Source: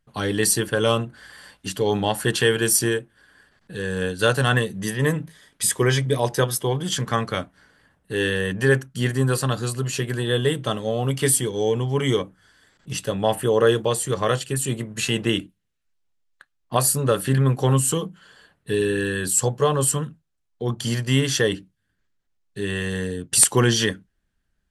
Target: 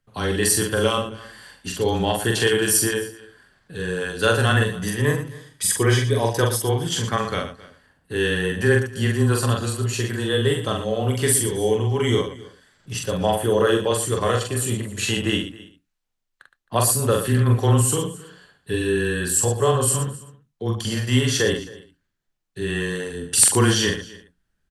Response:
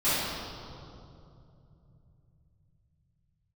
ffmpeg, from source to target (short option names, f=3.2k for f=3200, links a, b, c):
-filter_complex "[0:a]asplit=2[a][b];[b]aecho=0:1:266:0.0944[c];[a][c]amix=inputs=2:normalize=0,afreqshift=-13,asplit=2[d][e];[e]aecho=0:1:43.73|116.6:0.708|0.282[f];[d][f]amix=inputs=2:normalize=0,volume=-1dB"